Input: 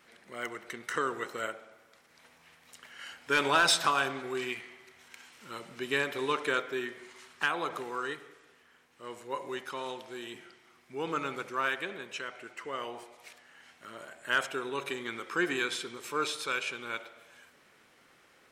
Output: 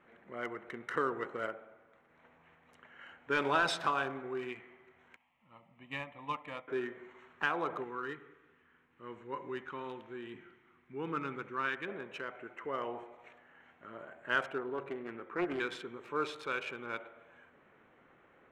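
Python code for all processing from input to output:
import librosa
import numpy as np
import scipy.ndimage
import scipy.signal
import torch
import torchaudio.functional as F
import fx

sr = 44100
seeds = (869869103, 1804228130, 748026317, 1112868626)

y = fx.chain(x, sr, fx.fixed_phaser(hz=1500.0, stages=6),
    fx.upward_expand(threshold_db=-49.0, expansion=1.5), at=(5.16, 6.68))
y = fx.chain(y, sr, fx.lowpass(hz=7400.0, slope=12),
    fx.peak_eq(hz=640.0, db=-11.5, octaves=1.0), at=(7.84, 11.88))
y = fx.chain(y, sr, fx.high_shelf(hz=2200.0, db=-10.5),
    fx.doppler_dist(depth_ms=0.41), at=(14.58, 15.6))
y = fx.wiener(y, sr, points=9)
y = fx.lowpass(y, sr, hz=1600.0, slope=6)
y = fx.rider(y, sr, range_db=4, speed_s=2.0)
y = F.gain(torch.from_numpy(y), -2.0).numpy()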